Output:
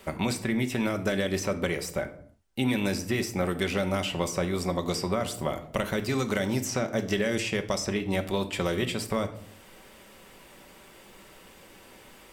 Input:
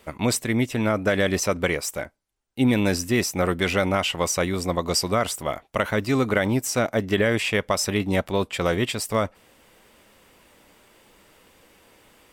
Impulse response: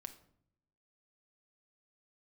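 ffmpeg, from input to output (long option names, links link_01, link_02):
-filter_complex "[0:a]asettb=1/sr,asplit=3[link_01][link_02][link_03];[link_01]atrim=end=6.194[link_04];[link_02]atrim=start=6.19:end=8,asetpts=PTS-STARTPTS,afade=type=in:duration=0.004:curve=qsin,afade=type=out:start_time=1.806:duration=0.004:curve=qsin,equalizer=frequency=6000:width=1.7:gain=9[link_05];[link_03]atrim=start=7.996[link_06];[link_04][link_05]acrossfade=duration=0.004:curve1=hsin:curve2=qsin[link_07];[link_07][link_06]acrossfade=duration=0.004:curve1=qsin:curve2=hsin,acrossover=split=650|3200[link_08][link_09][link_10];[link_08]acompressor=threshold=-32dB:ratio=4[link_11];[link_09]acompressor=threshold=-39dB:ratio=4[link_12];[link_10]acompressor=threshold=-42dB:ratio=4[link_13];[link_11][link_12][link_13]amix=inputs=3:normalize=0[link_14];[1:a]atrim=start_sample=2205,afade=type=out:start_time=0.39:duration=0.01,atrim=end_sample=17640[link_15];[link_14][link_15]afir=irnorm=-1:irlink=0,volume=8.5dB"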